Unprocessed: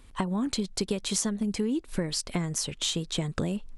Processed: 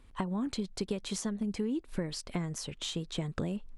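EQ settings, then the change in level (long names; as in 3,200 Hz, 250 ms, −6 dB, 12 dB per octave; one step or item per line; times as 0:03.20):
high-shelf EQ 4,200 Hz −8 dB
−4.5 dB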